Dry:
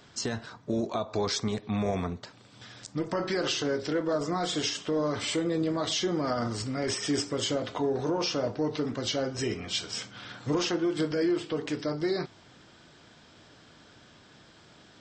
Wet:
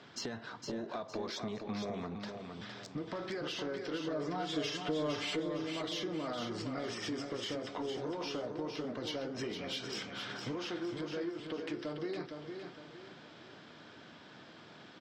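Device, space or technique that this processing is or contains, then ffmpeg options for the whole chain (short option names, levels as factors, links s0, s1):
AM radio: -filter_complex "[0:a]highpass=150,lowpass=4000,acompressor=threshold=0.0141:ratio=6,asoftclip=type=tanh:threshold=0.0316,asettb=1/sr,asplit=3[s0][s1][s2];[s0]atrim=end=3.934[s3];[s1]atrim=start=3.93:end=5.4,asetpts=PTS-STARTPTS,afade=t=in:d=0.004:c=qsin,afade=t=out:st=1.466:d=0.004:c=qsin,aecho=1:1:6.8:0.76,atrim=end_sample=64827[s4];[s2]atrim=start=5.396[s5];[s3][s4]acrossfade=d=0.004:c1=hsin:c2=qsin[s6];[s6][s5]acrossfade=d=0.004:c1=qsin:c2=hsin,aecho=1:1:460|920|1380|1840:0.501|0.185|0.0686|0.0254,volume=1.12"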